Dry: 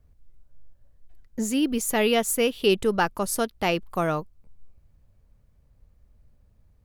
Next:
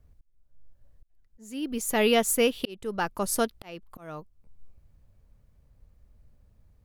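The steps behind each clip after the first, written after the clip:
volume swells 711 ms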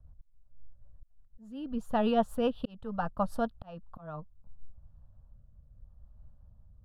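rotating-speaker cabinet horn 8 Hz, later 0.8 Hz, at 0:03.91
high-frequency loss of the air 480 metres
phaser with its sweep stopped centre 900 Hz, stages 4
level +5.5 dB

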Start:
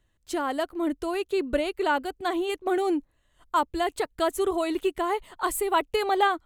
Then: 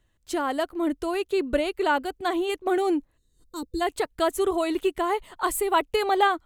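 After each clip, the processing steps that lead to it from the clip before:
gain on a spectral selection 0:03.17–0:03.81, 510–3,600 Hz −20 dB
level +1.5 dB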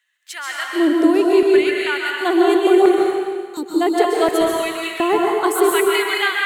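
auto-filter high-pass square 0.7 Hz 340–1,900 Hz
dense smooth reverb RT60 1.6 s, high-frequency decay 0.95×, pre-delay 115 ms, DRR −2 dB
level +3 dB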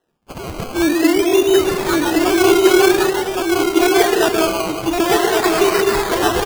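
sample-and-hold swept by an LFO 19×, swing 60% 0.48 Hz
single-tap delay 1,117 ms −3 dB

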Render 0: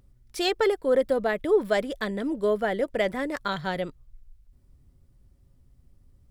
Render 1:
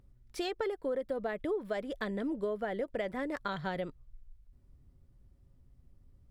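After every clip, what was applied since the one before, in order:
downward compressor 6 to 1, threshold −28 dBFS, peak gain reduction 11.5 dB
high-shelf EQ 3,900 Hz −8 dB
level −3 dB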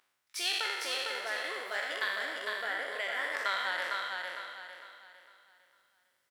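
peak hold with a decay on every bin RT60 1.39 s
high-pass filter 1,500 Hz 12 dB per octave
repeating echo 454 ms, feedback 36%, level −3.5 dB
level +6 dB

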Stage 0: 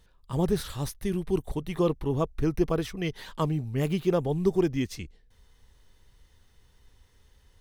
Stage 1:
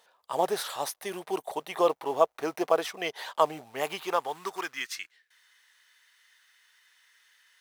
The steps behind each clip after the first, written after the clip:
in parallel at −11.5 dB: floating-point word with a short mantissa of 2 bits
on the sum: high-pass filter sweep 690 Hz → 1,700 Hz, 0:03.61–0:05.18
level +1.5 dB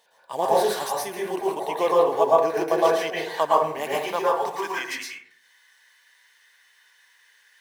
notch filter 1,300 Hz, Q 5.8
dense smooth reverb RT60 0.61 s, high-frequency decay 0.4×, pre-delay 100 ms, DRR −5.5 dB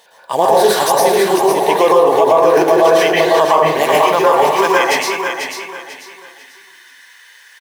repeating echo 492 ms, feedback 31%, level −6.5 dB
boost into a limiter +15 dB
level −1 dB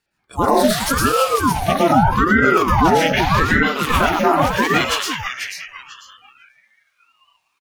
noise reduction from a noise print of the clip's start 23 dB
ring modulator whose carrier an LFO sweeps 540 Hz, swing 70%, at 0.82 Hz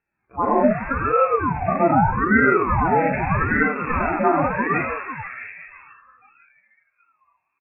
harmonic and percussive parts rebalanced percussive −17 dB
linear-phase brick-wall low-pass 2,700 Hz

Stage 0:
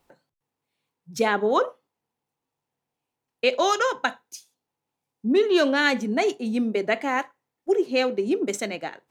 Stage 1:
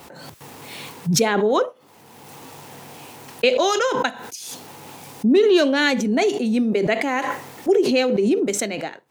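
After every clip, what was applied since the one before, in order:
high-pass filter 86 Hz
dynamic equaliser 1,200 Hz, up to −5 dB, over −36 dBFS, Q 0.95
background raised ahead of every attack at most 24 dB per second
level +4 dB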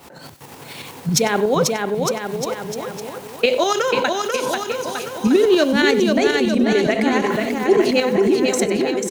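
single-tap delay 99 ms −17.5 dB
shaped tremolo saw up 11 Hz, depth 55%
bouncing-ball delay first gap 490 ms, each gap 0.85×, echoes 5
level +3 dB

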